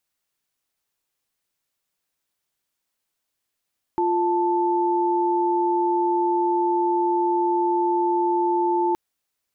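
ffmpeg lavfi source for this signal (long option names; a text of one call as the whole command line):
ffmpeg -f lavfi -i "aevalsrc='0.0891*(sin(2*PI*349.23*t)+sin(2*PI*880*t))':duration=4.97:sample_rate=44100" out.wav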